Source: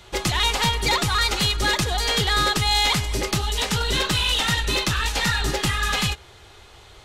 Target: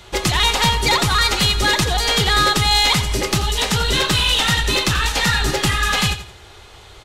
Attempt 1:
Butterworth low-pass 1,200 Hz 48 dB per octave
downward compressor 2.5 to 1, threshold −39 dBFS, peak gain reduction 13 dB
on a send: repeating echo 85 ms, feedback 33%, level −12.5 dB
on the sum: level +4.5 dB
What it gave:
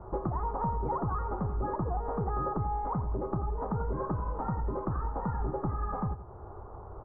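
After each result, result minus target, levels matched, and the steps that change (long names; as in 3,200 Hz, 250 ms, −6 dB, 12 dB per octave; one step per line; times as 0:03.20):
downward compressor: peak gain reduction +13 dB; 1,000 Hz band +5.0 dB
remove: downward compressor 2.5 to 1, threshold −39 dBFS, peak gain reduction 13 dB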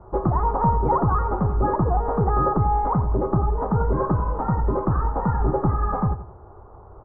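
1,000 Hz band +5.0 dB
remove: Butterworth low-pass 1,200 Hz 48 dB per octave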